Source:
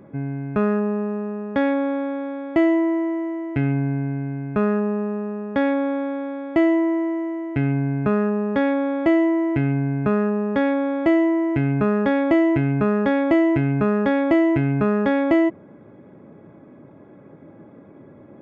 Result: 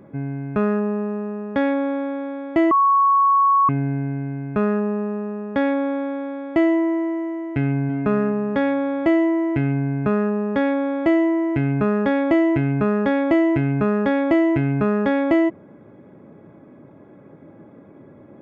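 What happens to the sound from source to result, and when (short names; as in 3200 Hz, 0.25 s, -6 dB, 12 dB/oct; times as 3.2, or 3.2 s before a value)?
2.71–3.69 bleep 1110 Hz -12.5 dBFS
7.59–8.02 echo throw 0.3 s, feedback 35%, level -10.5 dB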